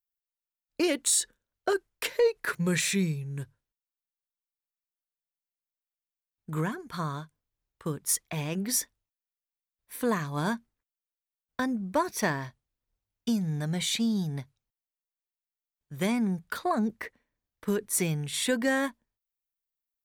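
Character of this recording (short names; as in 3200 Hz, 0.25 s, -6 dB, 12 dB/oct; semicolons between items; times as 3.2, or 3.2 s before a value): noise floor -94 dBFS; spectral tilt -4.0 dB/oct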